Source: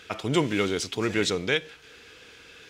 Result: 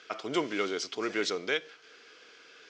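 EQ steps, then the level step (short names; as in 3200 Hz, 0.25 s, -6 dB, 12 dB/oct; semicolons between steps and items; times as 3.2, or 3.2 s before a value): speaker cabinet 430–5800 Hz, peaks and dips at 510 Hz -4 dB, 880 Hz -7 dB, 1800 Hz -5 dB, 2600 Hz -7 dB, 3700 Hz -7 dB; 0.0 dB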